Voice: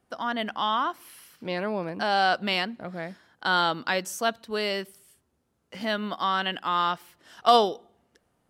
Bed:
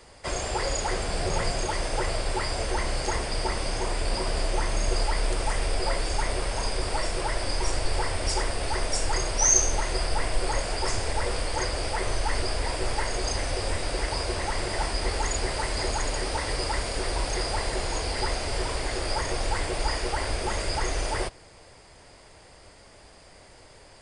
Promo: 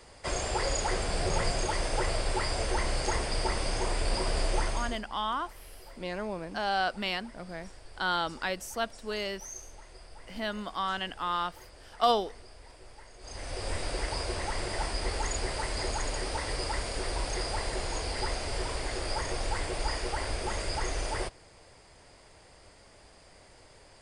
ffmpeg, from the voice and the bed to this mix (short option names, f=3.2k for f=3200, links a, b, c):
-filter_complex "[0:a]adelay=4550,volume=-6dB[a];[1:a]volume=17dB,afade=t=out:st=4.59:d=0.43:silence=0.0841395,afade=t=in:st=13.19:d=0.58:silence=0.112202[b];[a][b]amix=inputs=2:normalize=0"